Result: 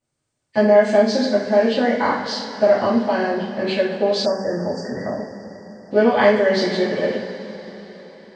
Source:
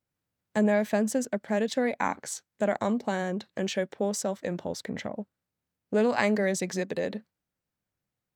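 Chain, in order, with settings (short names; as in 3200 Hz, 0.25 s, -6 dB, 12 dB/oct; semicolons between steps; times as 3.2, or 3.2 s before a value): nonlinear frequency compression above 1800 Hz 1.5:1; two-slope reverb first 0.46 s, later 4.6 s, from -17 dB, DRR -8 dB; spectral delete 4.26–5.92, 2000–4600 Hz; gain +1 dB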